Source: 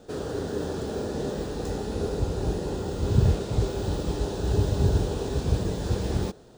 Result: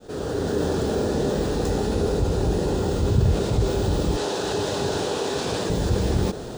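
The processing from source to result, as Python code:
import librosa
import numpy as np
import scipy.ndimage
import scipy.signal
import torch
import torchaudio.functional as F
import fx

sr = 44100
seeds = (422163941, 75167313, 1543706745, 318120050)

y = fx.fade_in_head(x, sr, length_s=0.61)
y = fx.weighting(y, sr, curve='A', at=(4.17, 5.7))
y = fx.env_flatten(y, sr, amount_pct=50)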